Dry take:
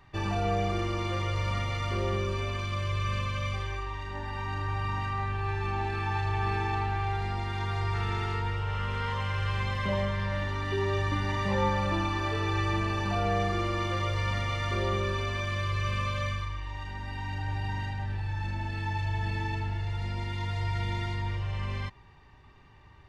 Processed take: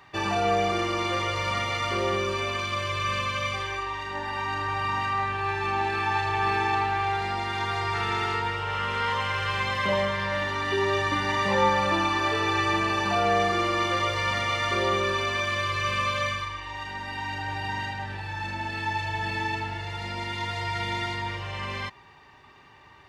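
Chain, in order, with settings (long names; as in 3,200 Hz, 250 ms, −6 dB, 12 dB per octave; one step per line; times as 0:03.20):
high-pass filter 430 Hz 6 dB per octave
level +8 dB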